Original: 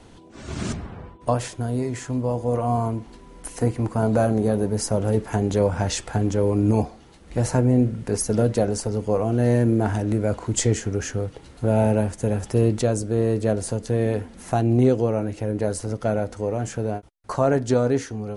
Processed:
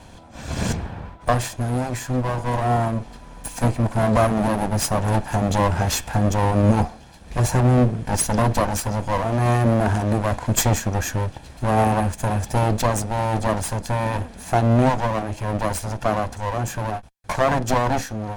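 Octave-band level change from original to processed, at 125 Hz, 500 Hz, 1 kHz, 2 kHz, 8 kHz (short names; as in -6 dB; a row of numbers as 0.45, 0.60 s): +2.0, -1.5, +8.0, +7.5, +3.5 dB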